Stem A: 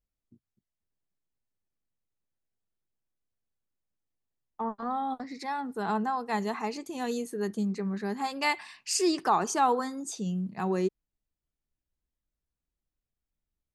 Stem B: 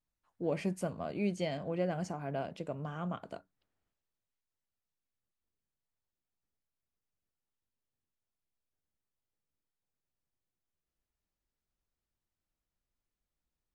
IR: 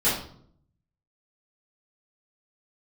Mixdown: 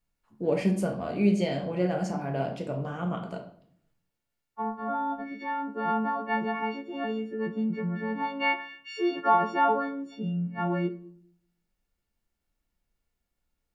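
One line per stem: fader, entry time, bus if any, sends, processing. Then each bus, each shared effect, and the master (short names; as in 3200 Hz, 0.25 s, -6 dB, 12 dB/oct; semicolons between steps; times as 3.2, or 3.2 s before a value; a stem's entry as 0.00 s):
-0.5 dB, 0.00 s, send -23.5 dB, frequency quantiser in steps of 4 st; LPF 2400 Hz 24 dB/oct
+2.5 dB, 0.00 s, send -14 dB, dry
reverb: on, RT60 0.60 s, pre-delay 4 ms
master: dry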